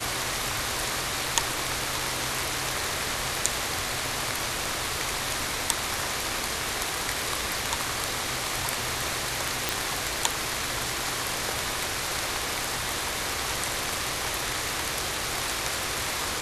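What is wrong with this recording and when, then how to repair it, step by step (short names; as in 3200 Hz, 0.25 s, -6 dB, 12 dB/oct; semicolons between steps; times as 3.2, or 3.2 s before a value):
9.69 pop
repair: de-click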